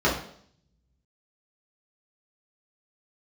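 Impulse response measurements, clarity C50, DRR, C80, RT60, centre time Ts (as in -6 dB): 6.5 dB, -7.5 dB, 10.5 dB, 0.60 s, 32 ms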